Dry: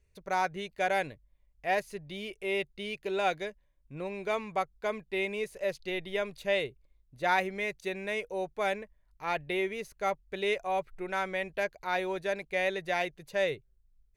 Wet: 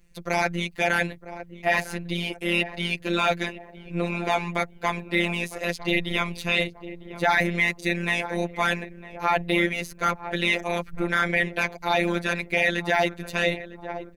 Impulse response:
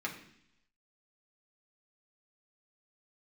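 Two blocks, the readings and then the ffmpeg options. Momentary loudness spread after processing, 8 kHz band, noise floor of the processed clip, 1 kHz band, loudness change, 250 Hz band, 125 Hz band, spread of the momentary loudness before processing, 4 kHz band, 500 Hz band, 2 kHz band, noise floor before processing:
8 LU, +10.0 dB, -48 dBFS, +5.5 dB, +7.5 dB, +11.5 dB, +15.5 dB, 9 LU, +10.5 dB, +3.5 dB, +10.0 dB, -68 dBFS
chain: -filter_complex "[0:a]asplit=2[a][b];[b]adelay=955,lowpass=f=1.2k:p=1,volume=-15dB,asplit=2[c][d];[d]adelay=955,lowpass=f=1.2k:p=1,volume=0.45,asplit=2[e][f];[f]adelay=955,lowpass=f=1.2k:p=1,volume=0.45,asplit=2[g][h];[h]adelay=955,lowpass=f=1.2k:p=1,volume=0.45[i];[a][c][e][g][i]amix=inputs=5:normalize=0,tremolo=f=160:d=0.621,acrossover=split=330|610|5500[j][k][l][m];[k]acompressor=threshold=-51dB:ratio=6[n];[j][n][l][m]amix=inputs=4:normalize=0,afftfilt=real='hypot(re,im)*cos(PI*b)':imag='0':win_size=1024:overlap=0.75,apsyclip=26.5dB,volume=-8.5dB"

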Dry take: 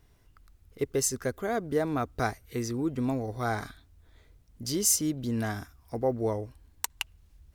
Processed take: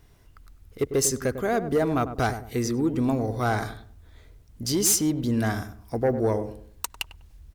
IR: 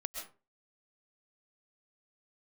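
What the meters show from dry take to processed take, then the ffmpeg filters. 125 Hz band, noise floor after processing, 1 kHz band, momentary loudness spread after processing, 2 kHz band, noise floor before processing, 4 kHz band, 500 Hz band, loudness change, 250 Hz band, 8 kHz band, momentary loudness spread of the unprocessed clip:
+6.0 dB, -54 dBFS, +5.0 dB, 14 LU, +4.5 dB, -62 dBFS, +4.5 dB, +5.0 dB, +4.5 dB, +5.5 dB, +3.5 dB, 12 LU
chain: -filter_complex "[0:a]aeval=exprs='0.447*sin(PI/2*3.55*val(0)/0.447)':c=same,asplit=2[a][b];[b]adelay=99,lowpass=f=890:p=1,volume=-9dB,asplit=2[c][d];[d]adelay=99,lowpass=f=890:p=1,volume=0.36,asplit=2[e][f];[f]adelay=99,lowpass=f=890:p=1,volume=0.36,asplit=2[g][h];[h]adelay=99,lowpass=f=890:p=1,volume=0.36[i];[c][e][g][i]amix=inputs=4:normalize=0[j];[a][j]amix=inputs=2:normalize=0,volume=-9dB"

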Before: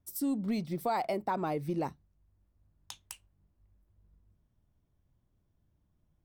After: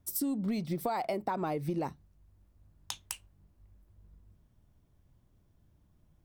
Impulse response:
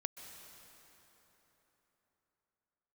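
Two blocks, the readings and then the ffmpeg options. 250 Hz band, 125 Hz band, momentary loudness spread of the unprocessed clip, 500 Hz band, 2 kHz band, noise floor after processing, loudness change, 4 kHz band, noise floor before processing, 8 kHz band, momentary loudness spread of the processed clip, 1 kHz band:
-0.5 dB, +1.0 dB, 17 LU, -0.5 dB, -0.5 dB, -68 dBFS, -1.5 dB, +3.0 dB, -75 dBFS, +5.5 dB, 11 LU, -1.5 dB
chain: -af "acompressor=threshold=-37dB:ratio=6,volume=7dB"

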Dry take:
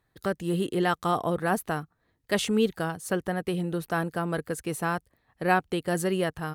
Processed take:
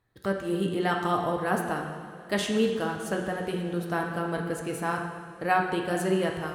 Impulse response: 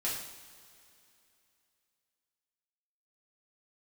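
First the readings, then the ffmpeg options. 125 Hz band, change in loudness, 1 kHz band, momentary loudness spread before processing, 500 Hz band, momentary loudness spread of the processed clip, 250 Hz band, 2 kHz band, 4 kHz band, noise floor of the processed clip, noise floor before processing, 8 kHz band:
-1.5 dB, -0.5 dB, +0.5 dB, 7 LU, 0.0 dB, 6 LU, -0.5 dB, 0.0 dB, -0.5 dB, -46 dBFS, -74 dBFS, -3.0 dB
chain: -filter_complex "[0:a]asplit=2[a][b];[1:a]atrim=start_sample=2205,asetrate=24255,aresample=44100,highshelf=f=7.6k:g=-11.5[c];[b][c]afir=irnorm=-1:irlink=0,volume=-6.5dB[d];[a][d]amix=inputs=2:normalize=0,volume=-5.5dB"

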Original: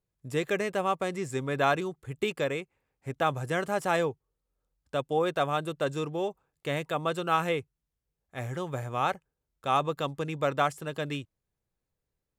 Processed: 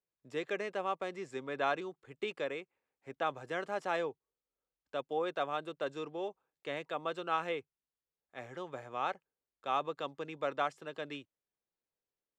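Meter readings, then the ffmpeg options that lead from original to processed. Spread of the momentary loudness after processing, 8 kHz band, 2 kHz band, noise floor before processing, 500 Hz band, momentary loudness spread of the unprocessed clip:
10 LU, under -10 dB, -7.0 dB, under -85 dBFS, -7.5 dB, 10 LU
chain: -filter_complex "[0:a]acrossover=split=230 6200:gain=0.141 1 0.0794[a][b][c];[a][b][c]amix=inputs=3:normalize=0,volume=-7dB"

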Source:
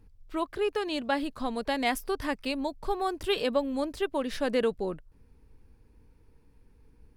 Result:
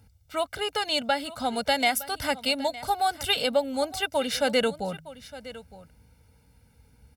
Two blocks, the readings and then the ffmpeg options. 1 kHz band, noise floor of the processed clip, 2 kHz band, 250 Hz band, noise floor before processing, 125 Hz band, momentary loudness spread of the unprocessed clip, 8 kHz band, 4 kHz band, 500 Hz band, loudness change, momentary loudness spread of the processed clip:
+5.5 dB, -61 dBFS, +6.0 dB, -1.5 dB, -60 dBFS, +4.0 dB, 7 LU, +11.0 dB, +9.5 dB, +1.5 dB, +4.0 dB, 17 LU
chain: -af "highpass=f=60:w=0.5412,highpass=f=60:w=1.3066,highshelf=f=2.7k:g=9,aecho=1:1:1.4:0.85,bandreject=f=79.74:t=h:w=4,bandreject=f=159.48:t=h:w=4,alimiter=limit=-14.5dB:level=0:latency=1:release=325,aecho=1:1:912:0.141,volume=2dB"

